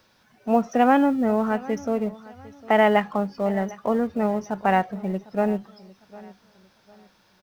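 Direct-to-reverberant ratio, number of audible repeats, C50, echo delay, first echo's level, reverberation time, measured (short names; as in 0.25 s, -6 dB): none, 2, none, 0.753 s, -20.5 dB, none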